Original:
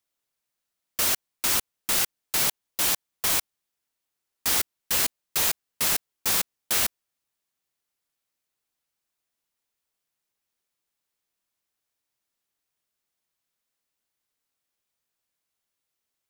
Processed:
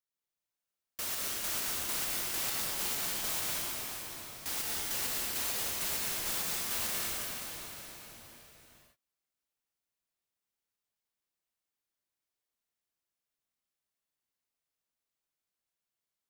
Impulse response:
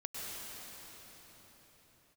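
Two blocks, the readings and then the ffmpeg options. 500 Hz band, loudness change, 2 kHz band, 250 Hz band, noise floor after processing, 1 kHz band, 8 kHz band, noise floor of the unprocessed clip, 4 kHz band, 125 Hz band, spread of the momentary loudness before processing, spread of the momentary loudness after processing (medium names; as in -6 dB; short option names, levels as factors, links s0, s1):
-6.0 dB, -8.5 dB, -7.0 dB, -5.5 dB, under -85 dBFS, -7.0 dB, -7.5 dB, -84 dBFS, -7.5 dB, -5.5 dB, 2 LU, 11 LU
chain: -filter_complex "[1:a]atrim=start_sample=2205[s0];[0:a][s0]afir=irnorm=-1:irlink=0,volume=0.376"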